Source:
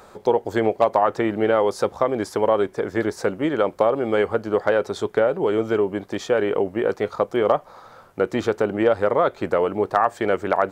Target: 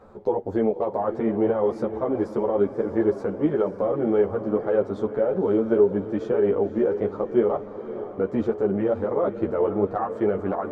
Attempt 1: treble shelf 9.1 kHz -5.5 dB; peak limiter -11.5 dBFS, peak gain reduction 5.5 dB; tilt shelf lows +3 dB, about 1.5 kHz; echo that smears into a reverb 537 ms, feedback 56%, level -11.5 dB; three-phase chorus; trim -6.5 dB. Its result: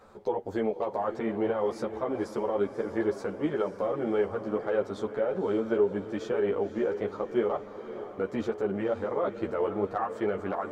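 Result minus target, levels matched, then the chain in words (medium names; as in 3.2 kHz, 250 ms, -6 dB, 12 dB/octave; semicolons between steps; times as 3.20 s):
2 kHz band +7.0 dB
treble shelf 9.1 kHz -5.5 dB; peak limiter -11.5 dBFS, peak gain reduction 5.5 dB; tilt shelf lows +11 dB, about 1.5 kHz; echo that smears into a reverb 537 ms, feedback 56%, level -11.5 dB; three-phase chorus; trim -6.5 dB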